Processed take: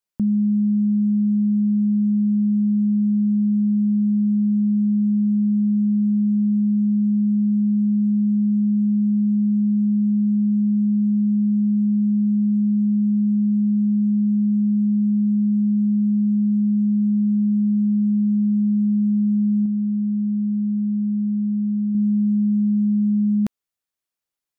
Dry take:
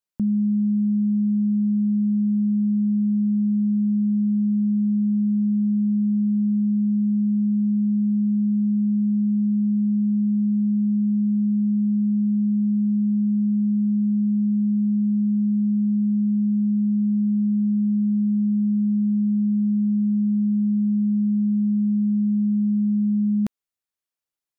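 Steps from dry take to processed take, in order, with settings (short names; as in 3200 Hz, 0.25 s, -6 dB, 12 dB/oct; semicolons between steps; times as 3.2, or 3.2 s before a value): 19.65–21.95 dynamic EQ 200 Hz, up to -4 dB, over -37 dBFS, Q 7; gain +2 dB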